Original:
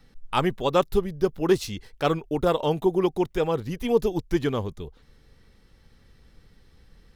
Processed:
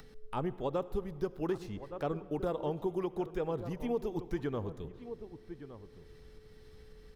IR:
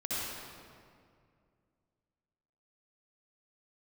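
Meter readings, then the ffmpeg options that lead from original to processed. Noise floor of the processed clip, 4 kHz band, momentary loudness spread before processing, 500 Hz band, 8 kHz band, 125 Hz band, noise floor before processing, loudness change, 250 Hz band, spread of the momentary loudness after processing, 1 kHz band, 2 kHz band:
-56 dBFS, -19.0 dB, 6 LU, -11.5 dB, under -15 dB, -9.5 dB, -57 dBFS, -11.5 dB, -10.5 dB, 13 LU, -12.5 dB, -14.5 dB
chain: -filter_complex "[0:a]asplit=2[s0][s1];[s1]adelay=1166,volume=0.178,highshelf=f=4000:g=-26.2[s2];[s0][s2]amix=inputs=2:normalize=0,acompressor=mode=upward:threshold=0.0112:ratio=2.5,aeval=exprs='val(0)+0.00251*sin(2*PI*430*n/s)':c=same,acrossover=split=850|1900[s3][s4][s5];[s3]acompressor=threshold=0.0631:ratio=4[s6];[s4]acompressor=threshold=0.01:ratio=4[s7];[s5]acompressor=threshold=0.00224:ratio=4[s8];[s6][s7][s8]amix=inputs=3:normalize=0,asplit=2[s9][s10];[1:a]atrim=start_sample=2205[s11];[s10][s11]afir=irnorm=-1:irlink=0,volume=0.0794[s12];[s9][s12]amix=inputs=2:normalize=0,volume=0.422"

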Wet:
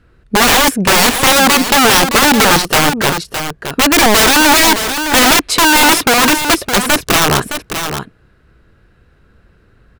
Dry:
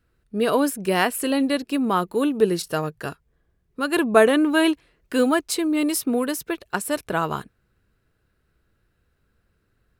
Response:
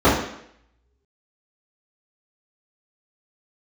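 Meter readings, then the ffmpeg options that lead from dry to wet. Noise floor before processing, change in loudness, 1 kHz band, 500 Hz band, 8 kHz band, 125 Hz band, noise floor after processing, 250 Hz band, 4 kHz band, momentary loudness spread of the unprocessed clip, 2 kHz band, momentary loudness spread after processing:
-70 dBFS, +12.5 dB, +15.5 dB, +6.0 dB, +20.0 dB, +13.0 dB, -51 dBFS, +6.5 dB, +21.0 dB, 11 LU, +16.5 dB, 12 LU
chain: -filter_complex "[0:a]apsyclip=8.41,aemphasis=mode=reproduction:type=50fm,aeval=exprs='(mod(1.5*val(0)+1,2)-1)/1.5':c=same,asplit=2[s0][s1];[s1]aecho=0:1:614:0.376[s2];[s0][s2]amix=inputs=2:normalize=0,volume=0.891"

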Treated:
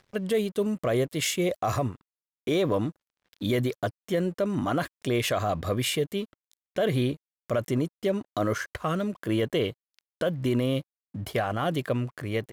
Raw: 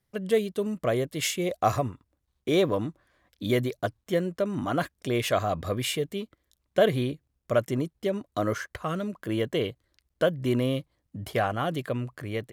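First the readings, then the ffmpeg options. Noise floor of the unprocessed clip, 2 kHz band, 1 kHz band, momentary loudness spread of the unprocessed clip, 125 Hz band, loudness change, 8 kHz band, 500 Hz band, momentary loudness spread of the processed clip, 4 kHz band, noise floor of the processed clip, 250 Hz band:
-78 dBFS, 0.0 dB, -1.5 dB, 9 LU, +1.5 dB, 0.0 dB, +1.0 dB, -0.5 dB, 7 LU, +1.0 dB, under -85 dBFS, +1.5 dB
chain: -filter_complex "[0:a]acrossover=split=5800[s0][s1];[s0]acompressor=mode=upward:threshold=0.00562:ratio=2.5[s2];[s2][s1]amix=inputs=2:normalize=0,alimiter=limit=0.1:level=0:latency=1:release=22,aeval=exprs='sgn(val(0))*max(abs(val(0))-0.00133,0)':c=same,volume=1.41"

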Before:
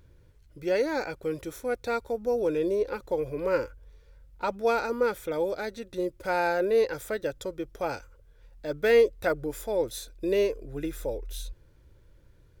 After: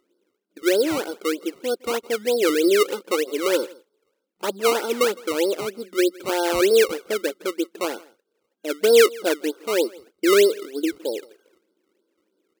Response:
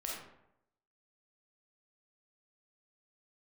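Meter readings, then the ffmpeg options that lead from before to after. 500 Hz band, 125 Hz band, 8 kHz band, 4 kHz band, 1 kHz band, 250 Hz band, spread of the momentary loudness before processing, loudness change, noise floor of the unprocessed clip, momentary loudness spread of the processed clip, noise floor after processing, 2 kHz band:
+6.0 dB, no reading, +15.0 dB, +15.0 dB, +3.5 dB, +9.0 dB, 12 LU, +7.0 dB, -58 dBFS, 12 LU, -76 dBFS, +6.5 dB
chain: -af "equalizer=f=360:w=1.8:g=11.5,agate=range=0.355:threshold=0.00708:ratio=16:detection=peak,afftfilt=real='re*between(b*sr/4096,190,1600)':imag='im*between(b*sr/4096,190,1600)':win_size=4096:overlap=0.75,acrusher=samples=18:mix=1:aa=0.000001:lfo=1:lforange=18:lforate=3.2,aecho=1:1:162:0.0708"

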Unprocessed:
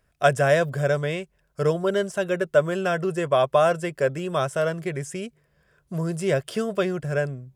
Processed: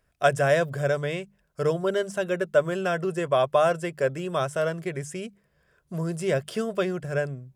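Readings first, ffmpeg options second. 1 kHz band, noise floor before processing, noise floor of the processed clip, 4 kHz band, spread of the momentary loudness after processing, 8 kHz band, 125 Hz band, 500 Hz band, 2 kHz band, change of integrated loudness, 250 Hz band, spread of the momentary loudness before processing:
-2.0 dB, -68 dBFS, -69 dBFS, -2.0 dB, 10 LU, -2.0 dB, -3.0 dB, -2.0 dB, -2.0 dB, -2.0 dB, -2.5 dB, 10 LU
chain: -af "bandreject=f=50:t=h:w=6,bandreject=f=100:t=h:w=6,bandreject=f=150:t=h:w=6,bandreject=f=200:t=h:w=6,volume=0.794"

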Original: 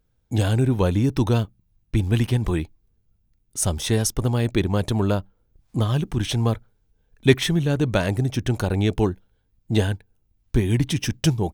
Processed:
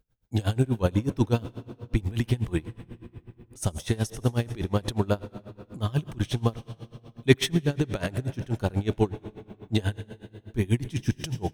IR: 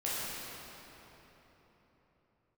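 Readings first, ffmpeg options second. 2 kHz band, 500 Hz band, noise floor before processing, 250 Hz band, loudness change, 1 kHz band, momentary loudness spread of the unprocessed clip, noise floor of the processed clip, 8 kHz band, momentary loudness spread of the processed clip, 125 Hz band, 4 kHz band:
-5.0 dB, -4.5 dB, -68 dBFS, -5.0 dB, -5.0 dB, -5.0 dB, 7 LU, -60 dBFS, -10.0 dB, 18 LU, -5.5 dB, -5.5 dB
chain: -filter_complex "[0:a]asplit=2[s0][s1];[1:a]atrim=start_sample=2205,adelay=83[s2];[s1][s2]afir=irnorm=-1:irlink=0,volume=0.106[s3];[s0][s3]amix=inputs=2:normalize=0,aeval=exprs='val(0)*pow(10,-23*(0.5-0.5*cos(2*PI*8.2*n/s))/20)':c=same"

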